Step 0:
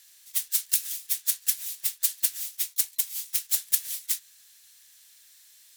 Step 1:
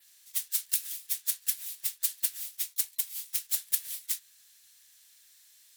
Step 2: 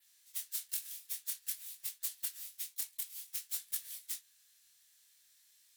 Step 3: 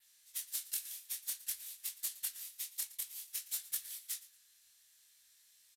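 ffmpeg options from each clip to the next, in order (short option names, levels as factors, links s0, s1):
-af "adynamicequalizer=threshold=0.00631:dfrequency=6400:dqfactor=2:tfrequency=6400:tqfactor=2:attack=5:release=100:ratio=0.375:range=2:mode=cutabove:tftype=bell,volume=0.631"
-af "flanger=delay=18.5:depth=6.6:speed=0.54,asoftclip=type=tanh:threshold=0.1,volume=0.596"
-af "aecho=1:1:115|230:0.126|0.0327,aresample=32000,aresample=44100,volume=1.12"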